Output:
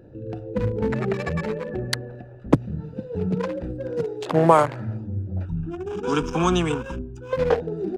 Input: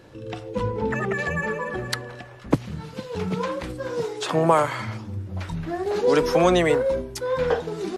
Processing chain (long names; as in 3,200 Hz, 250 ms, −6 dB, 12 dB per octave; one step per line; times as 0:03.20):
adaptive Wiener filter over 41 samples
0:05.45–0:07.33: phaser with its sweep stopped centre 2,900 Hz, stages 8
level +3.5 dB